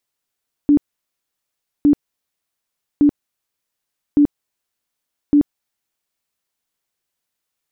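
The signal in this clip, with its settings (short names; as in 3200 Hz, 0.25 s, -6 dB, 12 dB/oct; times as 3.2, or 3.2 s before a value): tone bursts 291 Hz, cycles 24, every 1.16 s, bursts 5, -8 dBFS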